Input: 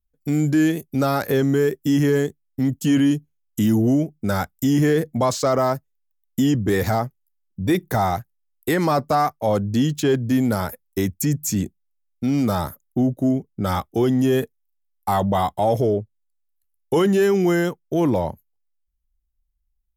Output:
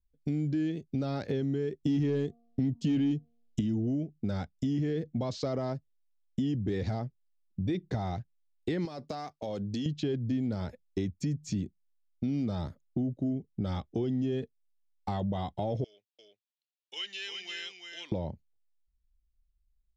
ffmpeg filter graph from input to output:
-filter_complex "[0:a]asettb=1/sr,asplit=3[s0][s1][s2];[s0]atrim=end=1.834[s3];[s1]atrim=start=1.83:end=3.61,asetpts=PTS-STARTPTS,afade=t=in:d=0.004:c=qsin,afade=t=out:st=1.776:d=0.004:c=qsin,bandreject=f=234.1:t=h:w=4,bandreject=f=468.2:t=h:w=4,bandreject=f=702.3:t=h:w=4,bandreject=f=936.4:t=h:w=4,bandreject=f=1170.5:t=h:w=4,acontrast=75,asoftclip=type=hard:threshold=0.447[s4];[s2]atrim=start=3.606[s5];[s3][s4]acrossfade=d=0.004:c1=hsin:c2=qsin[s6];[s6][s5]acrossfade=d=0.004:c1=qsin:c2=hsin,asettb=1/sr,asplit=3[s7][s8][s9];[s7]atrim=end=8.854[s10];[s8]atrim=start=8.85:end=9.86,asetpts=PTS-STARTPTS,afade=t=in:d=0.004:c=qsin,afade=t=out:st=1.006:d=0.004:c=qsin,aemphasis=mode=production:type=bsi,acompressor=threshold=0.0631:ratio=12:attack=3.2:release=140:knee=1:detection=peak[s11];[s9]atrim=start=9.856[s12];[s10][s11]acrossfade=d=0.004:c1=hsin:c2=qsin[s13];[s13][s12]acrossfade=d=0.004:c1=qsin:c2=hsin,asettb=1/sr,asplit=3[s14][s15][s16];[s14]atrim=end=15.844[s17];[s15]atrim=start=15.84:end=18.12,asetpts=PTS-STARTPTS,afade=t=in:d=0.004:c=qsin,afade=t=out:st=2.276:d=0.004:c=qsin,highpass=f=2700:t=q:w=1.6,aecho=1:1:346:0.562,atrim=end_sample=100548[s18];[s16]atrim=start=18.116[s19];[s17][s18]acrossfade=d=0.004:c1=hsin:c2=qsin[s20];[s20][s19]acrossfade=d=0.004:c1=qsin:c2=hsin,lowpass=f=4500:w=0.5412,lowpass=f=4500:w=1.3066,equalizer=f=1200:w=0.67:g=-14,acompressor=threshold=0.0282:ratio=3"

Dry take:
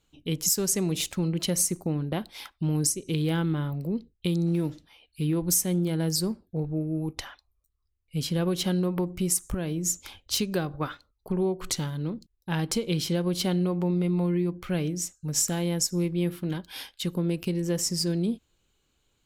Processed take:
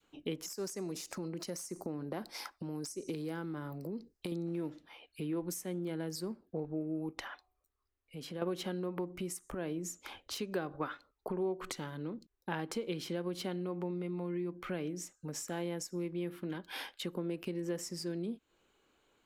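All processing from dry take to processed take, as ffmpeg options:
-filter_complex "[0:a]asettb=1/sr,asplit=3[s0][s1][s2];[s0]atrim=end=0.464[s3];[s1]atrim=start=0.46:end=4.32,asetpts=PTS-STARTPTS,afade=t=in:d=0.004:c=qsin,afade=t=out:st=3.856:d=0.004:c=qsin,highshelf=f=4100:t=q:w=3:g=6.5,acompressor=threshold=0.0355:ratio=5:attack=3.2:release=140:knee=1:detection=peak,asoftclip=type=hard:threshold=0.0596[s4];[s2]atrim=start=4.316[s5];[s3][s4]acrossfade=d=0.004:c1=hsin:c2=qsin[s6];[s6][s5]acrossfade=d=0.004:c1=qsin:c2=hsin,asettb=1/sr,asplit=3[s7][s8][s9];[s7]atrim=end=7.274[s10];[s8]atrim=start=7.27:end=8.42,asetpts=PTS-STARTPTS,afade=t=in:d=0.004:c=qsin,afade=t=out:st=1.146:d=0.004:c=qsin,acompressor=threshold=0.00708:ratio=2.5:attack=3.2:release=140:knee=1:detection=peak,bandreject=f=369:t=h:w=4,bandreject=f=738:t=h:w=4[s11];[s9]atrim=start=8.416[s12];[s10][s11]acrossfade=d=0.004:c1=hsin:c2=qsin[s13];[s13][s12]acrossfade=d=0.004:c1=qsin:c2=hsin,adynamicequalizer=threshold=0.00708:dfrequency=680:dqfactor=0.7:tfrequency=680:tqfactor=0.7:attack=5:release=100:ratio=0.375:range=2.5:mode=cutabove:tftype=bell,acompressor=threshold=0.0112:ratio=3,acrossover=split=250 2300:gain=0.141 1 0.251[s14][s15][s16];[s14][s15][s16]amix=inputs=3:normalize=0,volume=2.11"

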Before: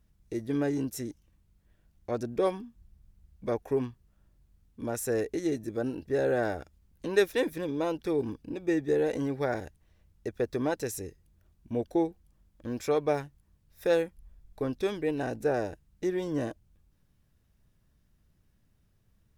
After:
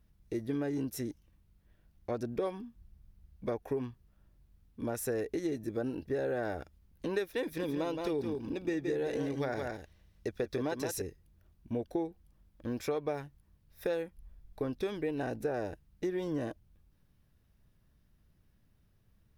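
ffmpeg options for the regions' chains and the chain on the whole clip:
-filter_complex "[0:a]asettb=1/sr,asplit=3[s0][s1][s2];[s0]atrim=end=7.434[s3];[s1]atrim=start=7.43:end=11.02,asetpts=PTS-STARTPTS,afade=t=in:d=0.004:c=qsin,afade=t=out:st=3.586:d=0.004:c=qsin,equalizer=f=5000:w=0.61:g=5.5,aecho=1:1:169:0.447,atrim=end_sample=158319[s4];[s2]atrim=start=11.016[s5];[s3][s4]acrossfade=d=0.004:c1=hsin:c2=qsin[s6];[s6][s5]acrossfade=d=0.004:c1=qsin:c2=hsin,equalizer=f=7400:w=1.8:g=-6,acompressor=threshold=0.0316:ratio=6"

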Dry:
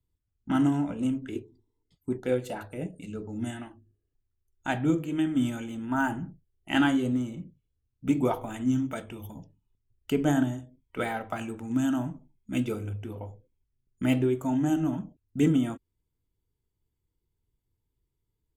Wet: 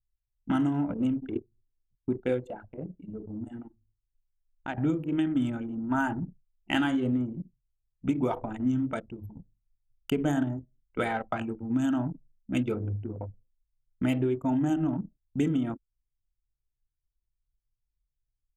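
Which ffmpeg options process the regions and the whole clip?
-filter_complex "[0:a]asettb=1/sr,asplit=3[s0][s1][s2];[s0]atrim=end=2.474[s3];[s1]atrim=start=2.47:end=4.78,asetpts=PTS-STARTPTS,afade=t=in:d=0.004:c=qsin,afade=t=out:st=2.306:d=0.004:c=qsin,bandreject=f=60:t=h:w=6,bandreject=f=120:t=h:w=6,bandreject=f=180:t=h:w=6,bandreject=f=240:t=h:w=6,bandreject=f=300:t=h:w=6,bandreject=f=360:t=h:w=6,bandreject=f=420:t=h:w=6,bandreject=f=480:t=h:w=6,acompressor=threshold=0.0141:ratio=2:attack=3.2:release=140:knee=1:detection=peak[s4];[s2]atrim=start=4.776[s5];[s3][s4]acrossfade=d=0.004:c1=hsin:c2=qsin[s6];[s6][s5]acrossfade=d=0.004:c1=qsin:c2=hsin,anlmdn=3.98,acompressor=threshold=0.0501:ratio=6,volume=1.41"

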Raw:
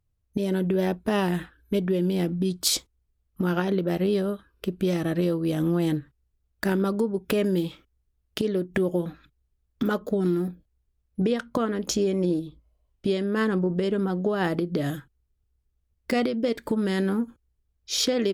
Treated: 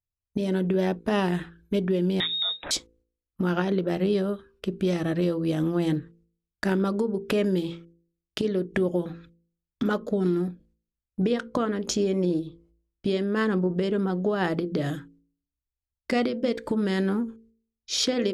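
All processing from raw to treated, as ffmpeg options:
-filter_complex "[0:a]asettb=1/sr,asplit=3[s0][s1][s2];[s0]atrim=end=2.204[s3];[s1]atrim=start=2.2:end=2.71,asetpts=PTS-STARTPTS,afade=t=in:d=0.004:c=qsin,afade=t=out:st=0.506:d=0.004:c=qsin,equalizer=f=2000:t=o:w=1.3:g=14,acompressor=threshold=0.0562:ratio=2:attack=3.2:release=140:knee=1:detection=peak,lowpass=f=3300:t=q:w=0.5098,lowpass=f=3300:t=q:w=0.6013,lowpass=f=3300:t=q:w=0.9,lowpass=f=3300:t=q:w=2.563,afreqshift=-3900[s4];[s2]atrim=start=2.706[s5];[s3][s4]acrossfade=d=0.004:c1=hsin:c2=qsin[s6];[s6][s5]acrossfade=d=0.004:c1=qsin:c2=hsin,agate=range=0.126:threshold=0.00126:ratio=16:detection=peak,lowpass=8500,bandreject=f=56.26:t=h:w=4,bandreject=f=112.52:t=h:w=4,bandreject=f=168.78:t=h:w=4,bandreject=f=225.04:t=h:w=4,bandreject=f=281.3:t=h:w=4,bandreject=f=337.56:t=h:w=4,bandreject=f=393.82:t=h:w=4,bandreject=f=450.08:t=h:w=4,bandreject=f=506.34:t=h:w=4"

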